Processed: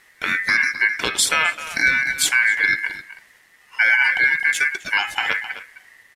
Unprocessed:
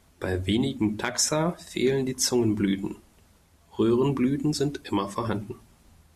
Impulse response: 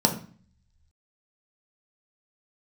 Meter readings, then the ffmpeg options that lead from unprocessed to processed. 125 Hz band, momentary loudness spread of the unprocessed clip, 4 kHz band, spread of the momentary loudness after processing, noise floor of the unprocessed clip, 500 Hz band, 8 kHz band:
below −15 dB, 10 LU, +8.5 dB, 9 LU, −60 dBFS, −11.0 dB, +5.0 dB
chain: -filter_complex "[0:a]asplit=2[link_01][link_02];[link_02]adelay=260,highpass=300,lowpass=3400,asoftclip=type=hard:threshold=-19.5dB,volume=-11dB[link_03];[link_01][link_03]amix=inputs=2:normalize=0,aeval=exprs='val(0)*sin(2*PI*1900*n/s)':channel_layout=same,volume=8.5dB"

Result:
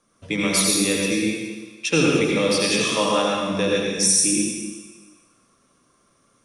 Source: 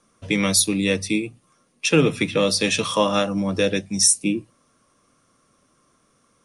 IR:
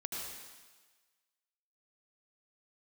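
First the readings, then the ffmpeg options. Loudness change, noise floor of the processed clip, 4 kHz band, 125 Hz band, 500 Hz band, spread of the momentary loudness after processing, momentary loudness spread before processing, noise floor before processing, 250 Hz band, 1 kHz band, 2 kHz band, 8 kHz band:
+0.5 dB, −63 dBFS, +1.0 dB, −2.0 dB, +0.5 dB, 13 LU, 9 LU, −64 dBFS, 0.0 dB, +1.0 dB, +1.0 dB, +1.0 dB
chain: -filter_complex "[0:a]bandreject=frequency=50:width_type=h:width=6,bandreject=frequency=100:width_type=h:width=6,bandreject=frequency=150:width_type=h:width=6,bandreject=frequency=200:width_type=h:width=6[link_01];[1:a]atrim=start_sample=2205[link_02];[link_01][link_02]afir=irnorm=-1:irlink=0"

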